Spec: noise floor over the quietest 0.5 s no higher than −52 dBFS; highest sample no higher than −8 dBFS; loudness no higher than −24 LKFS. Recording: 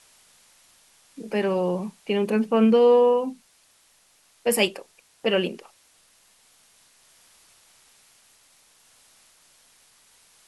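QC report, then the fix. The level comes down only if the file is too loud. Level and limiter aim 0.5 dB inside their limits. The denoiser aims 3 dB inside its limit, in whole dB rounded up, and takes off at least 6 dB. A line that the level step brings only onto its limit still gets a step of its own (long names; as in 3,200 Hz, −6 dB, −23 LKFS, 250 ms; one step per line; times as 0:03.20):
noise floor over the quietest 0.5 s −61 dBFS: in spec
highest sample −6.5 dBFS: out of spec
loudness −22.5 LKFS: out of spec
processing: level −2 dB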